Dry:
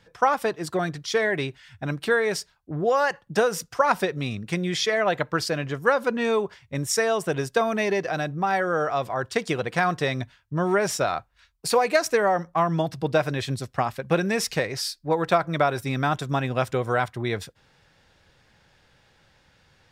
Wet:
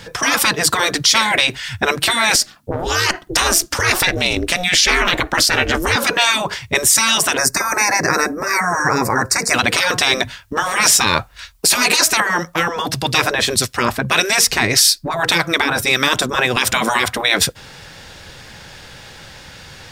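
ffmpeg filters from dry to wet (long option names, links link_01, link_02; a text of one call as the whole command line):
ffmpeg -i in.wav -filter_complex "[0:a]asettb=1/sr,asplit=3[link_01][link_02][link_03];[link_01]atrim=end=2.354[link_04];[link_02]atrim=start=2.35:end=5.96,asetpts=PTS-STARTPTS,afade=type=in:duration=0.004:curve=qsin,afade=type=out:start_time=3.606:duration=0.004:curve=qsin,aeval=exprs='val(0)*sin(2*PI*180*n/s)':channel_layout=same[link_05];[link_03]atrim=start=5.956[link_06];[link_04][link_05]acrossfade=duration=0.004:curve1=hsin:curve2=qsin[link_07];[link_07][link_06]acrossfade=duration=0.004:curve1=qsin:curve2=hsin,asettb=1/sr,asplit=3[link_08][link_09][link_10];[link_08]atrim=end=7.374[link_11];[link_09]atrim=start=7.37:end=9.54,asetpts=PTS-STARTPTS,afade=type=in:duration=0.004:curve=qsin,afade=type=out:start_time=2.166:duration=0.004:curve=qsin,asuperstop=centerf=3200:order=4:qfactor=1.1[link_12];[link_10]atrim=start=9.536[link_13];[link_11][link_12]acrossfade=duration=0.004:curve1=hsin:curve2=qsin[link_14];[link_14][link_13]acrossfade=duration=0.004:curve1=qsin:curve2=hsin,asettb=1/sr,asplit=3[link_15][link_16][link_17];[link_15]atrim=end=12.204[link_18];[link_16]atrim=start=12.2:end=16.57,asetpts=PTS-STARTPTS,afade=type=in:duration=0.004:curve=qsin,afade=type=out:start_time=4.366:duration=0.004:curve=qsin,acrossover=split=1400[link_19][link_20];[link_19]aeval=exprs='val(0)*(1-0.7/2+0.7/2*cos(2*PI*1.7*n/s))':channel_layout=same[link_21];[link_20]aeval=exprs='val(0)*(1-0.7/2-0.7/2*cos(2*PI*1.7*n/s))':channel_layout=same[link_22];[link_21][link_22]amix=inputs=2:normalize=0[link_23];[link_17]atrim=start=16.566[link_24];[link_18][link_23]acrossfade=duration=0.004:curve1=hsin:curve2=qsin[link_25];[link_25][link_24]acrossfade=duration=0.004:curve1=qsin:curve2=hsin,afftfilt=real='re*lt(hypot(re,im),0.112)':imag='im*lt(hypot(re,im),0.112)':win_size=1024:overlap=0.75,highshelf=frequency=3600:gain=7.5,alimiter=level_in=21.5dB:limit=-1dB:release=50:level=0:latency=1,volume=-1dB" out.wav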